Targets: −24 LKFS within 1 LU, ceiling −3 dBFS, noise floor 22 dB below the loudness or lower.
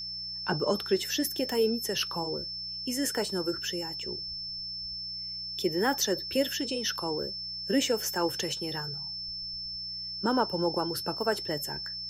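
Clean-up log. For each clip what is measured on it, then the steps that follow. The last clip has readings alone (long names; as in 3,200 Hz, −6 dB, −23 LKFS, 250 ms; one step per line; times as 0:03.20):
mains hum 60 Hz; hum harmonics up to 180 Hz; level of the hum −52 dBFS; interfering tone 5,300 Hz; level of the tone −35 dBFS; integrated loudness −30.5 LKFS; sample peak −13.5 dBFS; target loudness −24.0 LKFS
→ hum removal 60 Hz, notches 3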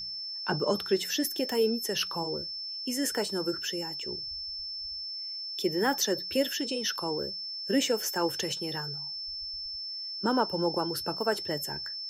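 mains hum none found; interfering tone 5,300 Hz; level of the tone −35 dBFS
→ notch filter 5,300 Hz, Q 30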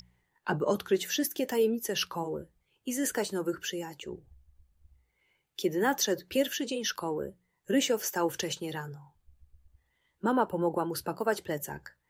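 interfering tone none found; integrated loudness −31.0 LKFS; sample peak −14.0 dBFS; target loudness −24.0 LKFS
→ level +7 dB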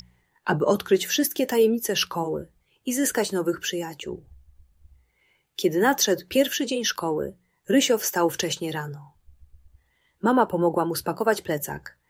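integrated loudness −24.0 LKFS; sample peak −7.0 dBFS; background noise floor −70 dBFS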